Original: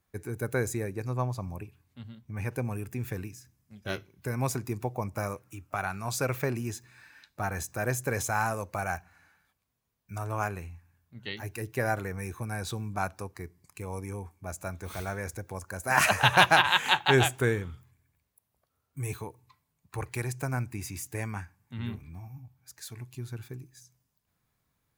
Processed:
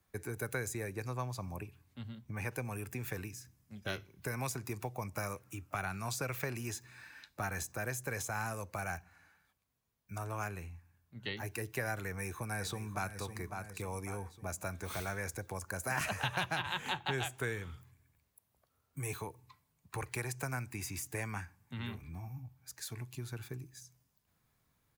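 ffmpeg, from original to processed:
ffmpeg -i in.wav -filter_complex "[0:a]asplit=2[link_01][link_02];[link_02]afade=type=in:start_time=12.03:duration=0.01,afade=type=out:start_time=13.13:duration=0.01,aecho=0:1:550|1100|1650|2200|2750:0.281838|0.126827|0.0570723|0.0256825|0.0115571[link_03];[link_01][link_03]amix=inputs=2:normalize=0,asplit=3[link_04][link_05][link_06];[link_04]atrim=end=7.722[link_07];[link_05]atrim=start=7.718:end=11.232,asetpts=PTS-STARTPTS,volume=-3.5dB[link_08];[link_06]atrim=start=11.228[link_09];[link_07][link_08]acrossfade=duration=0.004:curve1=hsin:curve2=hsin[link_10];[link_10][link_09]acrossfade=duration=0.004:curve1=hsin:curve2=hsin,acrossover=split=140|470|1500[link_11][link_12][link_13][link_14];[link_11]acompressor=threshold=-46dB:ratio=4[link_15];[link_12]acompressor=threshold=-47dB:ratio=4[link_16];[link_13]acompressor=threshold=-44dB:ratio=4[link_17];[link_14]acompressor=threshold=-40dB:ratio=4[link_18];[link_15][link_16][link_17][link_18]amix=inputs=4:normalize=0,volume=1dB" out.wav

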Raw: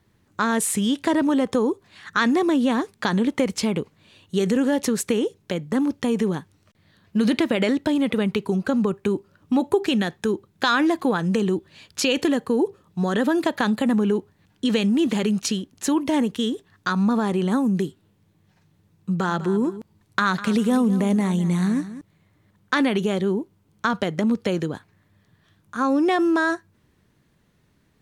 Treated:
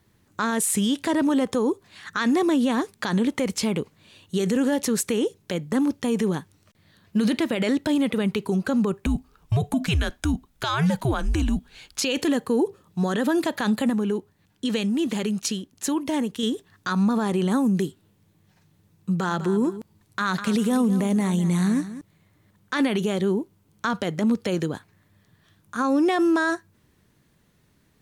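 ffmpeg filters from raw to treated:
ffmpeg -i in.wav -filter_complex "[0:a]asettb=1/sr,asplit=3[link_01][link_02][link_03];[link_01]atrim=end=9.064[link_04];[link_02]atrim=start=9.06:end=12.03,asetpts=PTS-STARTPTS,afade=type=in:duration=0.004:curve=qsin,afade=type=out:start_time=2.966:duration=0.004:curve=qsin,afreqshift=-140[link_05];[link_03]atrim=start=12.026[link_06];[link_04][link_05]acrossfade=duration=0.004:curve1=hsin:curve2=qsin[link_07];[link_07][link_06]acrossfade=duration=0.004:curve1=qsin:curve2=hsin,asplit=3[link_08][link_09][link_10];[link_08]atrim=end=13.902[link_11];[link_09]atrim=start=13.898:end=16.432,asetpts=PTS-STARTPTS,volume=-4dB[link_12];[link_10]atrim=start=16.428[link_13];[link_11][link_12]acrossfade=duration=0.004:curve1=hsin:curve2=hsin[link_14];[link_14][link_13]acrossfade=duration=0.004:curve1=hsin:curve2=hsin,highshelf=frequency=6100:gain=6.5,alimiter=limit=-14.5dB:level=0:latency=1:release=36" out.wav

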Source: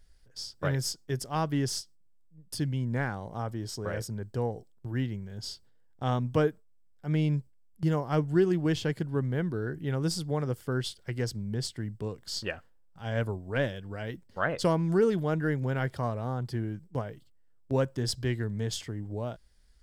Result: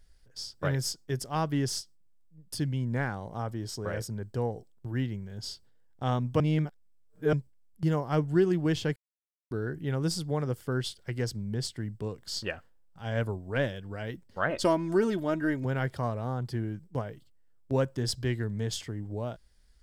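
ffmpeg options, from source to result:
ffmpeg -i in.wav -filter_complex "[0:a]asettb=1/sr,asplit=3[link_01][link_02][link_03];[link_01]atrim=end=14.504[link_04];[link_02]atrim=start=14.5:end=15.65,asetpts=PTS-STARTPTS,afade=type=in:duration=0.004:curve=qsin,afade=type=out:start_time=1.146:duration=0.004:curve=qsin,aecho=1:1:3.2:0.64,atrim=end_sample=50715[link_05];[link_03]atrim=start=15.646[link_06];[link_04][link_05]acrossfade=duration=0.004:curve1=hsin:curve2=qsin[link_07];[link_07][link_06]acrossfade=duration=0.004:curve1=qsin:curve2=hsin,asplit=5[link_08][link_09][link_10][link_11][link_12];[link_08]atrim=end=6.402[link_13];[link_09]atrim=start=6.398:end=7.332,asetpts=PTS-STARTPTS,areverse[link_14];[link_10]atrim=start=7.328:end=8.96,asetpts=PTS-STARTPTS,afade=type=out:start_time=1.628:duration=0.004:curve=hsin[link_15];[link_11]atrim=start=8.96:end=9.51,asetpts=PTS-STARTPTS,volume=0[link_16];[link_12]atrim=start=9.51,asetpts=PTS-STARTPTS,afade=type=in:duration=0.004:curve=hsin[link_17];[link_13][link_14]acrossfade=duration=0.004:curve1=hsin:curve2=hsin[link_18];[link_15][link_16][link_17]concat=n=3:v=0:a=1[link_19];[link_18][link_19]acrossfade=duration=0.004:curve1=hsin:curve2=hsin" out.wav

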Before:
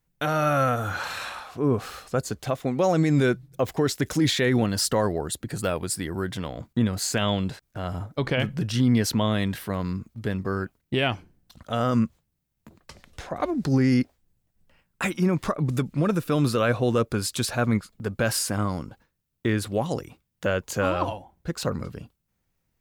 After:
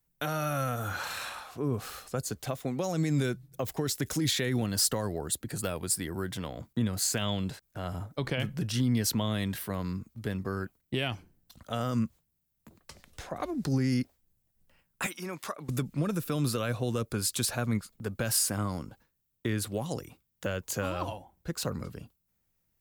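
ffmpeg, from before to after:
ffmpeg -i in.wav -filter_complex "[0:a]asettb=1/sr,asplit=3[link_01][link_02][link_03];[link_01]atrim=end=15.064[link_04];[link_02]atrim=start=15.06:end=15.69,asetpts=PTS-STARTPTS,afade=type=in:duration=0.004:curve=qsin,afade=type=out:start_time=0.626:duration=0.004:curve=qsin,highpass=frequency=930:poles=1[link_05];[link_03]atrim=start=15.686[link_06];[link_04][link_05]acrossfade=duration=0.004:curve1=hsin:curve2=qsin[link_07];[link_07][link_06]acrossfade=duration=0.004:curve1=qsin:curve2=hsin,highshelf=frequency=8000:gain=10.5,acrossover=split=200|3000[link_08][link_09][link_10];[link_09]acompressor=threshold=-25dB:ratio=6[link_11];[link_08][link_11][link_10]amix=inputs=3:normalize=0,volume=-5dB" out.wav

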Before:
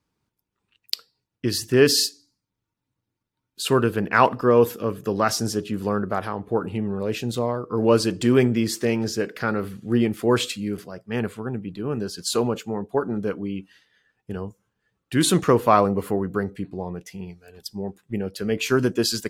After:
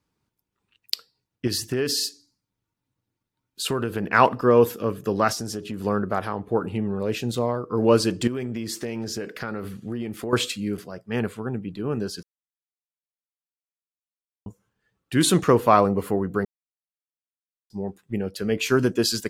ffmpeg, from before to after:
ffmpeg -i in.wav -filter_complex "[0:a]asettb=1/sr,asplit=3[link_01][link_02][link_03];[link_01]atrim=end=1.474[link_04];[link_02]atrim=start=1.47:end=4.06,asetpts=PTS-STARTPTS,afade=type=in:duration=0.004:curve=qsin,afade=type=out:start_time=2.586:duration=0.004:curve=qsin,acompressor=threshold=-21dB:ratio=5:attack=3.2:release=140:knee=1:detection=peak[link_05];[link_03]atrim=start=4.056[link_06];[link_04][link_05]acrossfade=duration=0.004:curve1=hsin:curve2=qsin[link_07];[link_07][link_06]acrossfade=duration=0.004:curve1=qsin:curve2=hsin,asettb=1/sr,asplit=3[link_08][link_09][link_10];[link_08]atrim=end=5.324[link_11];[link_09]atrim=start=5.32:end=5.84,asetpts=PTS-STARTPTS,afade=type=in:duration=0.004:curve=qsin,afade=type=out:start_time=0.516:duration=0.004:curve=qsin,acompressor=threshold=-27dB:ratio=4:attack=3.2:release=140:knee=1:detection=peak[link_12];[link_10]atrim=start=5.836[link_13];[link_11][link_12]acrossfade=duration=0.004:curve1=hsin:curve2=qsin[link_14];[link_14][link_13]acrossfade=duration=0.004:curve1=qsin:curve2=hsin,asettb=1/sr,asplit=3[link_15][link_16][link_17];[link_15]atrim=end=8.274[link_18];[link_16]atrim=start=8.27:end=10.33,asetpts=PTS-STARTPTS,afade=type=in:duration=0.004:curve=qsin,afade=type=out:start_time=2.056:duration=0.004:curve=qsin,acompressor=threshold=-26dB:ratio=6:attack=3.2:release=140:knee=1:detection=peak[link_19];[link_17]atrim=start=10.326[link_20];[link_18][link_19]acrossfade=duration=0.004:curve1=hsin:curve2=qsin[link_21];[link_21][link_20]acrossfade=duration=0.004:curve1=qsin:curve2=hsin,asplit=5[link_22][link_23][link_24][link_25][link_26];[link_22]atrim=end=12.23,asetpts=PTS-STARTPTS,afade=type=out:start_time=12.226:duration=0.004:curve=hsin[link_27];[link_23]atrim=start=12.23:end=14.46,asetpts=PTS-STARTPTS,volume=0[link_28];[link_24]atrim=start=14.46:end=16.45,asetpts=PTS-STARTPTS,afade=type=in:duration=0.004:curve=hsin,afade=type=out:start_time=1.986:duration=0.004:curve=hsin[link_29];[link_25]atrim=start=16.45:end=17.7,asetpts=PTS-STARTPTS,volume=0[link_30];[link_26]atrim=start=17.7,asetpts=PTS-STARTPTS,afade=type=in:duration=0.004:curve=hsin[link_31];[link_27][link_28][link_29][link_30][link_31]concat=n=5:v=0:a=1" out.wav

